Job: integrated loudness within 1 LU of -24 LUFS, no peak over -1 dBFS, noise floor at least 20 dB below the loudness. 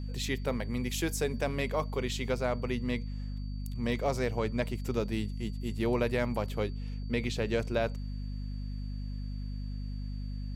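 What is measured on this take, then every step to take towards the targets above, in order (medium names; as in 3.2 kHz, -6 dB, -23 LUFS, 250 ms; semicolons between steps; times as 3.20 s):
hum 50 Hz; highest harmonic 250 Hz; hum level -34 dBFS; steady tone 4.6 kHz; tone level -58 dBFS; loudness -33.5 LUFS; peak level -17.0 dBFS; loudness target -24.0 LUFS
-> de-hum 50 Hz, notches 5; band-stop 4.6 kHz, Q 30; trim +9.5 dB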